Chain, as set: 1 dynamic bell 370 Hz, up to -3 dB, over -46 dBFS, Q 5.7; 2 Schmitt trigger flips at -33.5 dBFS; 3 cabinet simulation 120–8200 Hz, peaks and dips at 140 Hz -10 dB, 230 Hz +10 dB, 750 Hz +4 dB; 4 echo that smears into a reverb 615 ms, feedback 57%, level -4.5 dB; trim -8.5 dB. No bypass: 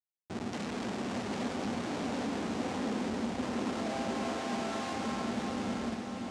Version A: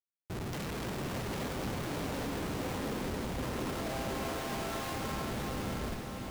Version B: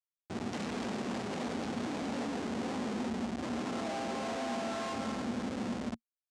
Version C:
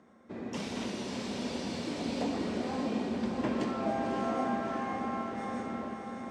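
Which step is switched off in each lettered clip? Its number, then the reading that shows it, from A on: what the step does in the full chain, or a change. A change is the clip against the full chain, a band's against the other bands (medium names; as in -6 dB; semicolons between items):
3, 125 Hz band +5.5 dB; 4, echo-to-direct -3.0 dB to none; 2, crest factor change +3.5 dB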